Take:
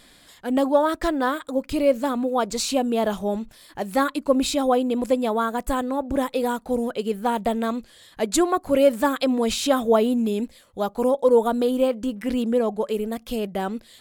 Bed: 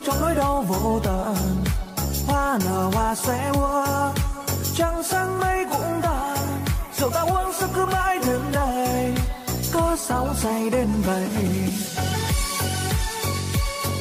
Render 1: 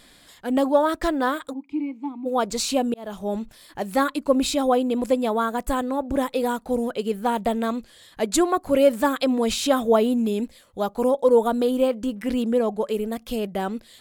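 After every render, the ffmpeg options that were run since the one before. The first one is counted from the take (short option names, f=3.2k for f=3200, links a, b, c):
-filter_complex "[0:a]asplit=3[a][b][c];[a]afade=t=out:st=1.52:d=0.02[d];[b]asplit=3[e][f][g];[e]bandpass=f=300:t=q:w=8,volume=0dB[h];[f]bandpass=f=870:t=q:w=8,volume=-6dB[i];[g]bandpass=f=2.24k:t=q:w=8,volume=-9dB[j];[h][i][j]amix=inputs=3:normalize=0,afade=t=in:st=1.52:d=0.02,afade=t=out:st=2.25:d=0.02[k];[c]afade=t=in:st=2.25:d=0.02[l];[d][k][l]amix=inputs=3:normalize=0,asplit=2[m][n];[m]atrim=end=2.94,asetpts=PTS-STARTPTS,afade=t=out:st=2.936:d=0.004:c=hsin[o];[n]atrim=start=2.94,asetpts=PTS-STARTPTS,afade=t=in:d=0.44[p];[o][p]concat=n=2:v=0:a=1"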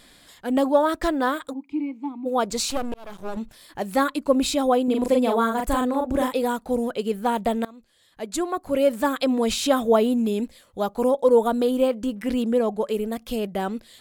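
-filter_complex "[0:a]asettb=1/sr,asplit=3[a][b][c];[a]atrim=end=2.704[d];[b]atrim=start=2.7:end=3.37,asetpts=PTS-STARTPTS,afade=t=in:d=0.004:c=qsin,afade=t=out:st=0.666:d=0.004:c=qsin,aeval=exprs='max(val(0),0)':c=same[e];[c]atrim=start=3.366[f];[d][e]acrossfade=d=0.004:c1=hsin:c2=qsin[g];[g][f]acrossfade=d=0.004:c1=qsin:c2=hsin,asettb=1/sr,asplit=3[h][i][j];[h]atrim=end=4.844[k];[i]atrim=start=4.84:end=6.34,asetpts=PTS-STARTPTS,afade=t=in:d=0.004:c=qsin,afade=t=out:st=1.496:d=0.004:c=qsin,asplit=2[l][m];[m]adelay=40,volume=-3dB[n];[l][n]amix=inputs=2:normalize=0,atrim=end_sample=66150[o];[j]atrim=start=6.336[p];[k][o]acrossfade=d=0.004:c1=hsin:c2=qsin[q];[q][p]acrossfade=d=0.004:c1=qsin:c2=hsin,asplit=2[r][s];[r]atrim=end=7.65,asetpts=PTS-STARTPTS,afade=t=out:st=7.646:d=0.004:c=hsin:silence=0.0707946[t];[s]atrim=start=7.65,asetpts=PTS-STARTPTS,afade=t=in:d=1.7:silence=0.0707946[u];[t][u]concat=n=2:v=0:a=1"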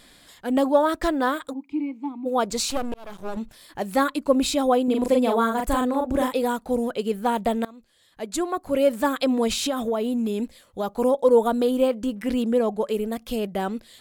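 -filter_complex "[0:a]asettb=1/sr,asplit=3[a][b][c];[a]atrim=end=9.474[d];[b]atrim=start=9.47:end=10.92,asetpts=PTS-STARTPTS,afade=t=in:d=0.004:c=qsin,afade=t=out:st=1.446:d=0.004:c=qsin,acompressor=threshold=-21dB:ratio=6:attack=3.2:release=140:knee=1:detection=peak[e];[c]atrim=start=10.916[f];[d][e]acrossfade=d=0.004:c1=hsin:c2=qsin[g];[g][f]acrossfade=d=0.004:c1=qsin:c2=hsin"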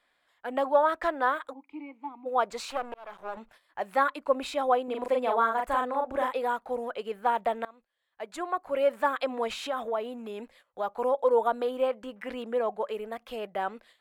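-filter_complex "[0:a]agate=range=-13dB:threshold=-45dB:ratio=16:detection=peak,acrossover=split=540 2600:gain=0.112 1 0.141[a][b][c];[a][b][c]amix=inputs=3:normalize=0"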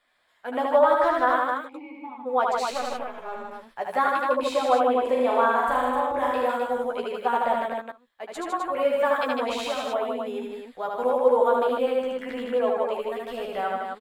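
-filter_complex "[0:a]asplit=2[a][b];[b]adelay=12,volume=-5dB[c];[a][c]amix=inputs=2:normalize=0,asplit=2[d][e];[e]aecho=0:1:75.8|154.5|256.6:0.708|0.631|0.562[f];[d][f]amix=inputs=2:normalize=0"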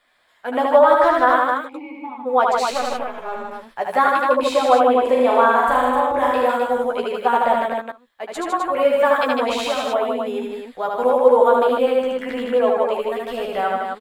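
-af "volume=6.5dB,alimiter=limit=-2dB:level=0:latency=1"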